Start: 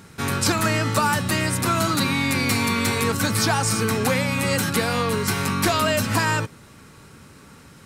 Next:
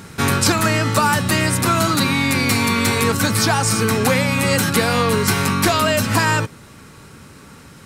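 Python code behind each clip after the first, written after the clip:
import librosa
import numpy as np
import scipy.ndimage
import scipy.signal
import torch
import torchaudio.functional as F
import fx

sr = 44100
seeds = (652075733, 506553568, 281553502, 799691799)

y = fx.rider(x, sr, range_db=10, speed_s=0.5)
y = y * 10.0 ** (4.5 / 20.0)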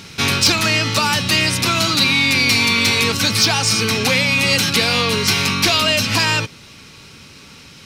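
y = fx.band_shelf(x, sr, hz=3700.0, db=11.5, octaves=1.7)
y = 10.0 ** (-2.5 / 20.0) * np.tanh(y / 10.0 ** (-2.5 / 20.0))
y = y * 10.0 ** (-2.5 / 20.0)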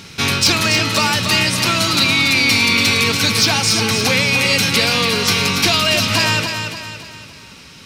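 y = fx.echo_feedback(x, sr, ms=284, feedback_pct=44, wet_db=-7)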